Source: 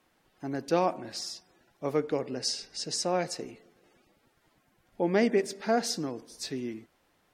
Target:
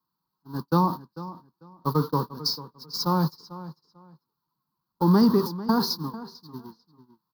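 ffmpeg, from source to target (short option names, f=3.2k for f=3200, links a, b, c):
-filter_complex "[0:a]aeval=exprs='val(0)+0.5*0.0224*sgn(val(0))':c=same,highpass=f=58:p=1,agate=range=-52dB:threshold=-28dB:ratio=16:detection=peak,firequalizer=gain_entry='entry(100,0);entry(150,12);entry(250,1);entry(670,-15);entry(960,14);entry(2200,-28);entry(4400,8);entry(7900,-23);entry(12000,8)':delay=0.05:min_phase=1,acrossover=split=450[a][b];[b]acompressor=threshold=-28dB:ratio=6[c];[a][c]amix=inputs=2:normalize=0,asplit=2[d][e];[e]adelay=445,lowpass=f=3.9k:p=1,volume=-15.5dB,asplit=2[f][g];[g]adelay=445,lowpass=f=3.9k:p=1,volume=0.22[h];[f][h]amix=inputs=2:normalize=0[i];[d][i]amix=inputs=2:normalize=0,volume=5dB"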